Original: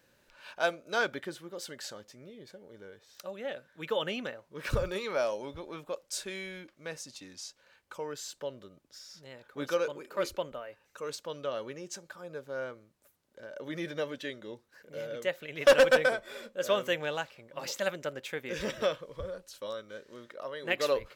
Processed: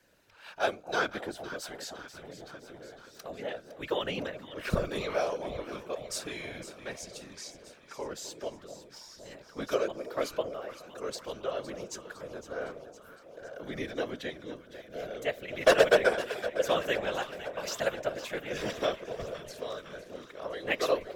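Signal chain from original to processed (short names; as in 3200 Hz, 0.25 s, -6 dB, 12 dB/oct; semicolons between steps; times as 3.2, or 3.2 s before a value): echo with dull and thin repeats by turns 0.255 s, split 820 Hz, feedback 79%, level -11 dB; whisperiser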